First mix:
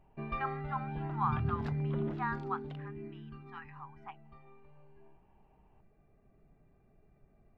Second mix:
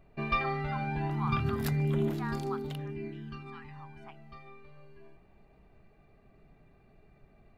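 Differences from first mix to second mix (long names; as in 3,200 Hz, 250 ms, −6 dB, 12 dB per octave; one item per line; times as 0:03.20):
speech −9.0 dB
first sound +4.5 dB
master: remove head-to-tape spacing loss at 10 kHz 34 dB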